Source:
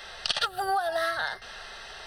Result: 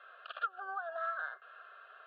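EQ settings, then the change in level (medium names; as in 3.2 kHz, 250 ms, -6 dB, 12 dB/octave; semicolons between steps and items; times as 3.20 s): Bessel high-pass 830 Hz, order 2; four-pole ladder low-pass 1.9 kHz, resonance 35%; static phaser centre 1.3 kHz, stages 8; 0.0 dB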